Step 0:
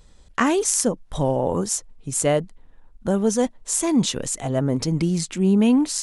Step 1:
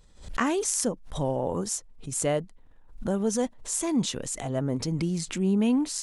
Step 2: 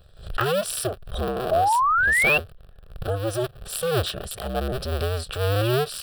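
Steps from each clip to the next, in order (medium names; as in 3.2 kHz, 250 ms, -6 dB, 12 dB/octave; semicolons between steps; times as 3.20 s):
swell ahead of each attack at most 110 dB/s; trim -6.5 dB
cycle switcher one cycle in 2, inverted; static phaser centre 1.4 kHz, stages 8; painted sound rise, 1.51–2.38 s, 620–2800 Hz -25 dBFS; trim +5.5 dB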